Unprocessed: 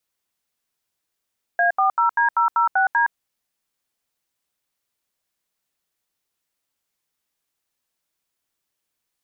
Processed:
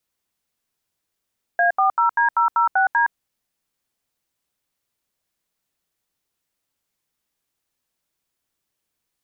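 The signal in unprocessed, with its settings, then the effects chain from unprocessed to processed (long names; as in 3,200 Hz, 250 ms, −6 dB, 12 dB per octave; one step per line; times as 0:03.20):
touch tones "A40D006D", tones 116 ms, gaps 78 ms, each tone −17.5 dBFS
low-shelf EQ 390 Hz +5 dB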